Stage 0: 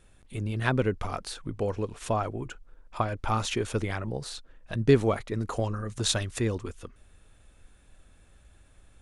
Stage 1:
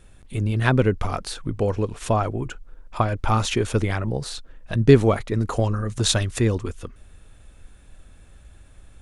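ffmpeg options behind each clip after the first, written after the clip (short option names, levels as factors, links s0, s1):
-af "lowshelf=f=210:g=4,volume=1.88"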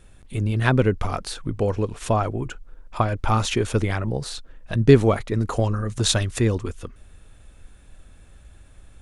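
-af anull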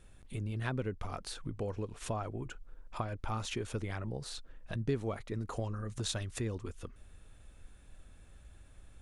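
-af "acompressor=threshold=0.0251:ratio=2,volume=0.422"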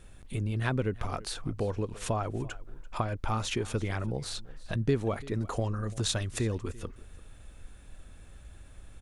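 -af "aecho=1:1:339:0.0944,volume=2"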